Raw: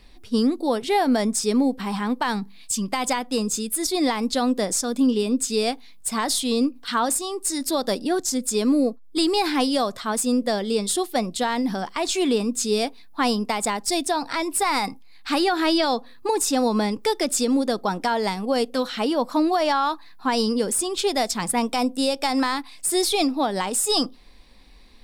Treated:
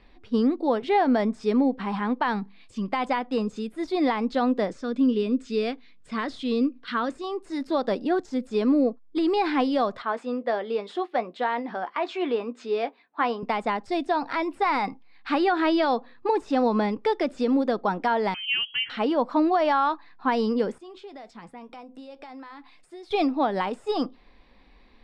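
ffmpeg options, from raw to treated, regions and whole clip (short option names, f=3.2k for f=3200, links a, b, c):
-filter_complex "[0:a]asettb=1/sr,asplit=3[a][b][c];[a]atrim=end=4.704[d];[b]atrim=start=4.7:end=7.24,asetpts=PTS-STARTPTS,afade=t=in:d=0.004:c=qsin,afade=t=out:st=2.536:d=0.004:c=qsin,lowpass=8.7k,equalizer=f=820:w=2.2:g=-11[e];[c]atrim=start=7.236[f];[d][e]acrossfade=d=0.004:c1=hsin:c2=qsin[g];[g][f]acrossfade=d=0.004:c1=qsin:c2=hsin,asettb=1/sr,asplit=3[h][i][j];[h]atrim=end=10.024[k];[i]atrim=start=10.02:end=13.43,asetpts=PTS-STARTPTS,afade=t=in:d=0.004:c=qsin,afade=t=out:st=3.406:d=0.004:c=qsin,highpass=370,lowpass=2.1k,aemphasis=mode=production:type=75fm,asplit=2[l][m];[m]adelay=17,volume=-12.5dB[n];[l][n]amix=inputs=2:normalize=0,atrim=end_sample=150381[o];[j]atrim=start=13.426[p];[k][o]acrossfade=d=0.004:c1=hsin:c2=qsin[q];[q][p]acrossfade=d=0.004:c1=qsin:c2=hsin,asettb=1/sr,asplit=3[r][s][t];[r]atrim=end=18.344[u];[s]atrim=start=18.34:end=18.9,asetpts=PTS-STARTPTS,afade=t=in:d=0.004:c=qsin,afade=t=out:st=0.556:d=0.004:c=qsin,aecho=1:1:3.8:0.35,atrim=end_sample=24696,lowpass=f=2.8k:t=q:w=0.5098,lowpass=f=2.8k:t=q:w=0.6013,lowpass=f=2.8k:t=q:w=0.9,lowpass=f=2.8k:t=q:w=2.563,afreqshift=-3300,equalizer=f=610:w=1:g=-14.5[v];[t]atrim=start=18.896[w];[u][v]acrossfade=d=0.004:c1=hsin:c2=qsin[x];[x][w]acrossfade=d=0.004:c1=qsin:c2=hsin,asettb=1/sr,asplit=3[y][z][aa];[y]atrim=end=20.784[ab];[z]atrim=start=20.78:end=23.11,asetpts=PTS-STARTPTS,afade=t=in:d=0.004:c=qsin,afade=t=out:st=2.326:d=0.004:c=qsin,acompressor=threshold=-33dB:ratio=8:attack=3.2:release=140:knee=1:detection=peak,flanger=delay=5.8:depth=1.2:regen=-78:speed=1.8:shape=triangular[ac];[aa]atrim=start=23.106[ad];[ab][ac]acrossfade=d=0.004:c1=hsin:c2=qsin[ae];[ae][ad]acrossfade=d=0.004:c1=qsin:c2=hsin,deesser=0.55,lowpass=2.4k,lowshelf=f=160:g=-6"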